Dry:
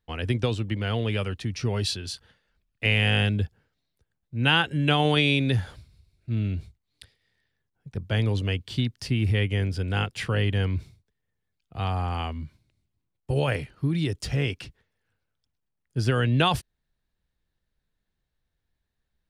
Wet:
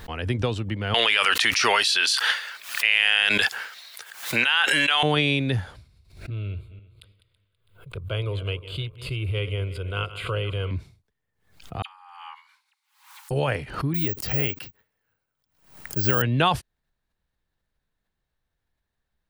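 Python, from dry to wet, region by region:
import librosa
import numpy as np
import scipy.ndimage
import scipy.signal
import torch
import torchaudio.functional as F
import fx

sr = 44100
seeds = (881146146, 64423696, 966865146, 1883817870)

y = fx.chain(x, sr, fx.highpass(hz=1500.0, slope=12),
    fx.env_flatten(amount_pct=100), at=(0.94, 5.03))
y = fx.chain(y, sr, fx.reverse_delay_fb(ms=164, feedback_pct=46, wet_db=-14.0),
    fx.fixed_phaser(hz=1200.0, stages=8), at=(6.3, 10.71))
y = fx.chain(y, sr, fx.dispersion(late='lows', ms=42.0, hz=2800.0),
    fx.over_compress(threshold_db=-34.0, ratio=-0.5),
    fx.brickwall_highpass(low_hz=780.0), at=(11.82, 13.31))
y = fx.chain(y, sr, fx.low_shelf(hz=64.0, db=-9.0),
    fx.notch(hz=3500.0, q=19.0),
    fx.resample_bad(factor=2, down='none', up='zero_stuff'), at=(13.94, 16.22))
y = fx.peak_eq(y, sr, hz=1000.0, db=5.0, octaves=2.0)
y = fx.pre_swell(y, sr, db_per_s=110.0)
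y = F.gain(torch.from_numpy(y), -1.5).numpy()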